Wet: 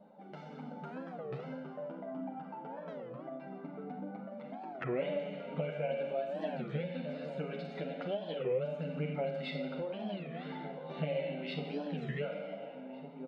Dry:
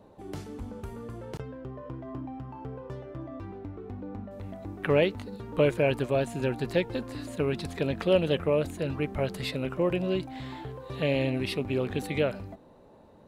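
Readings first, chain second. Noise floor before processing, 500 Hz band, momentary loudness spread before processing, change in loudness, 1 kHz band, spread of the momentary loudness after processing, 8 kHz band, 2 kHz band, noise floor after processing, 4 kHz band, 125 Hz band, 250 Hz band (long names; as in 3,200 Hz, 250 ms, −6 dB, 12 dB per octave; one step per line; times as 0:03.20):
−55 dBFS, −8.5 dB, 16 LU, −9.0 dB, −5.0 dB, 10 LU, below −25 dB, −10.0 dB, −48 dBFS, −10.5 dB, −9.5 dB, −9.0 dB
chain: dynamic equaliser 1,200 Hz, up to −4 dB, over −45 dBFS, Q 1.4
reverb reduction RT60 0.98 s
high-frequency loss of the air 320 metres
comb filter 1.4 ms, depth 70%
slap from a distant wall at 250 metres, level −15 dB
brick-wall band-pass 140–9,700 Hz
four-comb reverb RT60 1.3 s, combs from 31 ms, DRR 1.5 dB
downward compressor 2.5 to 1, threshold −41 dBFS, peak gain reduction 17 dB
multi-voice chorus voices 2, 0.22 Hz, delay 10 ms, depth 3.1 ms
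automatic gain control gain up to 6 dB
wow of a warped record 33 1/3 rpm, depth 250 cents
level −1.5 dB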